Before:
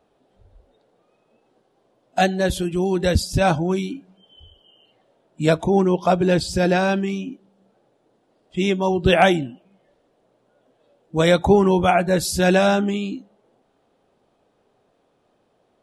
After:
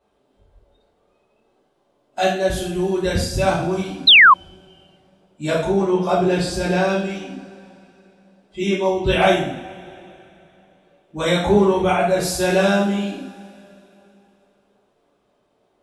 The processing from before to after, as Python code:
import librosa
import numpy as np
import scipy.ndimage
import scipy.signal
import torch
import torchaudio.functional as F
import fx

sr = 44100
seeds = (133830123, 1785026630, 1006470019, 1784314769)

y = fx.rev_double_slope(x, sr, seeds[0], early_s=0.55, late_s=3.1, knee_db=-21, drr_db=-7.5)
y = fx.spec_paint(y, sr, seeds[1], shape='fall', start_s=4.07, length_s=0.27, low_hz=980.0, high_hz=4200.0, level_db=0.0)
y = F.gain(torch.from_numpy(y), -8.0).numpy()